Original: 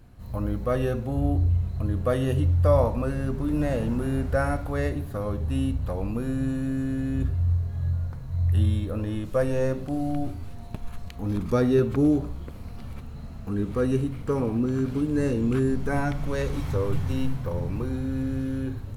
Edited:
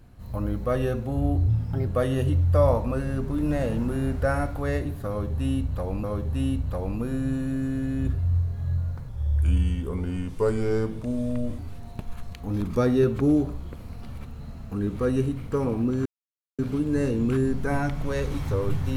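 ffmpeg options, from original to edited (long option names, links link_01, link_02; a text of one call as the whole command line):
ffmpeg -i in.wav -filter_complex "[0:a]asplit=7[link_01][link_02][link_03][link_04][link_05][link_06][link_07];[link_01]atrim=end=1.484[link_08];[link_02]atrim=start=1.48:end=1.97,asetpts=PTS-STARTPTS,asetrate=56007,aresample=44100[link_09];[link_03]atrim=start=1.966:end=6.142[link_10];[link_04]atrim=start=5.188:end=8.244[link_11];[link_05]atrim=start=8.24:end=10.34,asetpts=PTS-STARTPTS,asetrate=37044,aresample=44100[link_12];[link_06]atrim=start=10.336:end=14.81,asetpts=PTS-STARTPTS,afade=type=out:start_time=4.47:duration=0.004:curve=hsin,apad=pad_dur=0.53[link_13];[link_07]atrim=start=14.81,asetpts=PTS-STARTPTS,afade=type=in:duration=0.004:curve=hsin[link_14];[link_08][link_09]acrossfade=duration=0.004:curve1=hsin:curve2=hsin[link_15];[link_15][link_10]acrossfade=duration=0.004:curve1=hsin:curve2=hsin[link_16];[link_16][link_11]acrossfade=duration=0.004:curve1=hsin:curve2=hsin[link_17];[link_17][link_12]acrossfade=duration=0.004:curve1=hsin:curve2=hsin[link_18];[link_13][link_14]concat=n=2:v=0:a=1[link_19];[link_18][link_19]acrossfade=duration=0.004:curve1=hsin:curve2=hsin" out.wav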